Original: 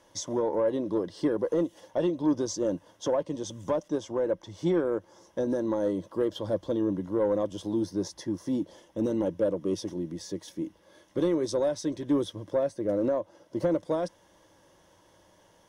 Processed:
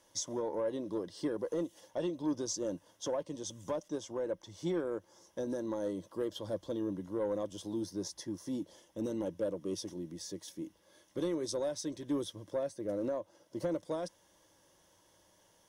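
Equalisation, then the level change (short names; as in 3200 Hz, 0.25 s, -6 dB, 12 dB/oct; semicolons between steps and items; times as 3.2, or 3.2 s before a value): high shelf 4000 Hz +10.5 dB; -8.5 dB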